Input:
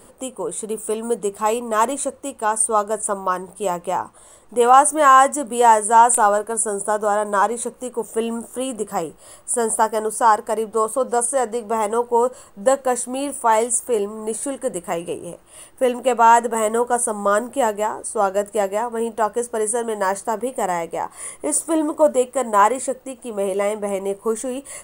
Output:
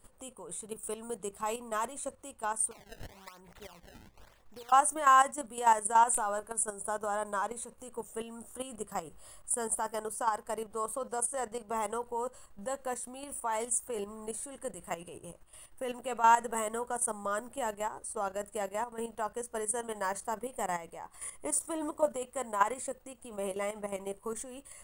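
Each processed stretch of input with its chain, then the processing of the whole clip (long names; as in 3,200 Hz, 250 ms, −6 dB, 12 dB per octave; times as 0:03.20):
0:02.71–0:04.72: downward compressor 5 to 1, threshold −33 dBFS + sample-and-hold swept by an LFO 22×, swing 160% 1 Hz
whole clip: low-shelf EQ 77 Hz +10.5 dB; output level in coarse steps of 11 dB; parametric band 350 Hz −7 dB 2.1 octaves; level −7 dB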